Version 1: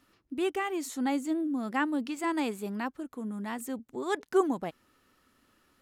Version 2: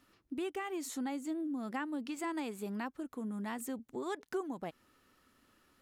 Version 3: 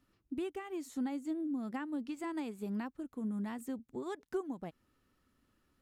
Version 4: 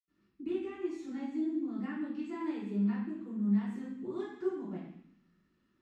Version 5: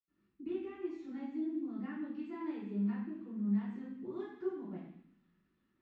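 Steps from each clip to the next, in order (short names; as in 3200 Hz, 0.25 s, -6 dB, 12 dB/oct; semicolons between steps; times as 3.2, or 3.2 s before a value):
compressor 4:1, threshold -34 dBFS, peak gain reduction 13.5 dB; gain -1.5 dB
low shelf 250 Hz +11.5 dB; upward expander 1.5:1, over -43 dBFS; gain -2.5 dB
reverb RT60 0.70 s, pre-delay 77 ms; gain +8 dB
air absorption 150 m; thin delay 0.346 s, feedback 78%, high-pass 2400 Hz, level -23 dB; gain -3.5 dB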